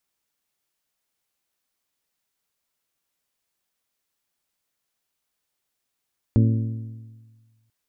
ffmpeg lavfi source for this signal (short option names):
-f lavfi -i "aevalsrc='0.224*pow(10,-3*t/1.52)*sin(2*PI*112*t)+0.126*pow(10,-3*t/1.235)*sin(2*PI*224*t)+0.0708*pow(10,-3*t/1.169)*sin(2*PI*268.8*t)+0.0398*pow(10,-3*t/1.093)*sin(2*PI*336*t)+0.0224*pow(10,-3*t/1.003)*sin(2*PI*448*t)+0.0126*pow(10,-3*t/0.938)*sin(2*PI*560*t)':d=1.34:s=44100"